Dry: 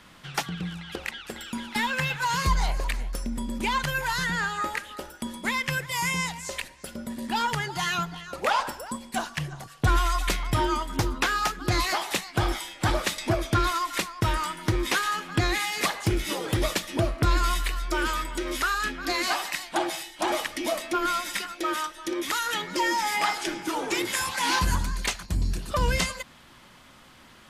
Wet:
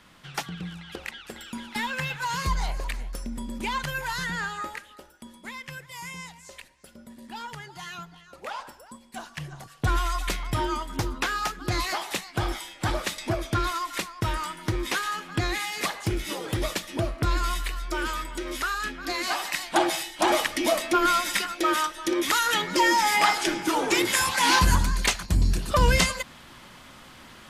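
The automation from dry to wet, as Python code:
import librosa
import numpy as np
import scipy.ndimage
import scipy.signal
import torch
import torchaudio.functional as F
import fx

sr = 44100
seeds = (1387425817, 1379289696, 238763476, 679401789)

y = fx.gain(x, sr, db=fx.line((4.52, -3.0), (5.07, -11.5), (9.06, -11.5), (9.56, -2.5), (19.23, -2.5), (19.75, 4.5)))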